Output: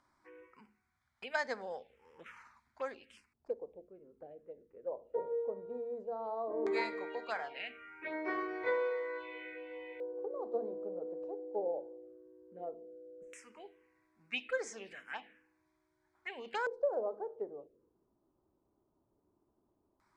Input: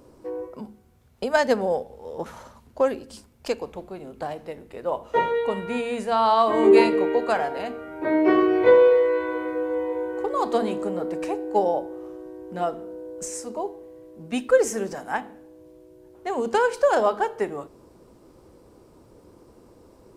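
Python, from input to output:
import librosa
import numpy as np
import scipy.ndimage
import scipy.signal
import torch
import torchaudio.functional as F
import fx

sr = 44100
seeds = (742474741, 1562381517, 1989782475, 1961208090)

y = fx.filter_lfo_lowpass(x, sr, shape='square', hz=0.15, low_hz=500.0, high_hz=2400.0, q=2.8)
y = fx.env_phaser(y, sr, low_hz=450.0, high_hz=2800.0, full_db=-17.5)
y = F.preemphasis(torch.from_numpy(y), 0.97).numpy()
y = y * librosa.db_to_amplitude(3.0)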